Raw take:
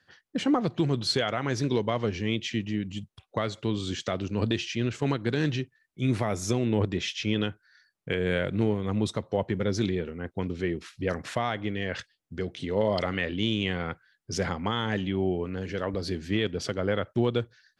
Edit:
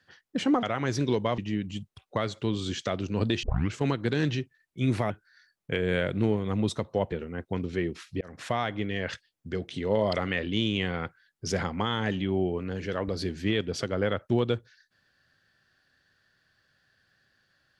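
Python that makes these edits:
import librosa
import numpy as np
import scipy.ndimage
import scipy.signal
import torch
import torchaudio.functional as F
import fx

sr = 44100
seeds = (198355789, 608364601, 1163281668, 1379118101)

y = fx.edit(x, sr, fx.cut(start_s=0.63, length_s=0.63),
    fx.cut(start_s=2.01, length_s=0.58),
    fx.tape_start(start_s=4.64, length_s=0.29),
    fx.cut(start_s=6.31, length_s=1.17),
    fx.cut(start_s=9.5, length_s=0.48),
    fx.fade_in_span(start_s=11.07, length_s=0.32), tone=tone)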